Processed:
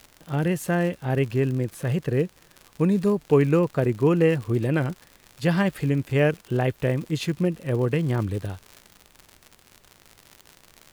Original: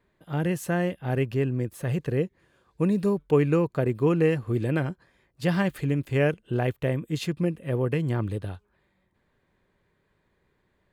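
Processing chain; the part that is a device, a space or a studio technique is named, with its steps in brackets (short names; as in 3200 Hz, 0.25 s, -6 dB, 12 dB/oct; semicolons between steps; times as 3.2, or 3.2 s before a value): vinyl LP (wow and flutter; crackle 90/s -34 dBFS; pink noise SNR 35 dB); gain +2.5 dB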